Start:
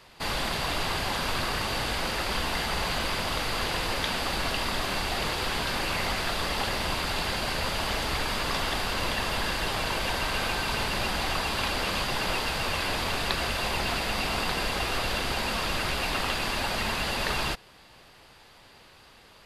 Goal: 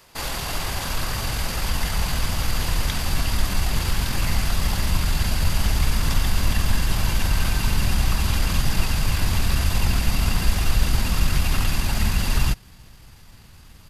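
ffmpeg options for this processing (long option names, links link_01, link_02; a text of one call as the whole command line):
ffmpeg -i in.wav -af "atempo=1.4,aexciter=amount=2:drive=7.3:freq=5500,asubboost=boost=7.5:cutoff=170" out.wav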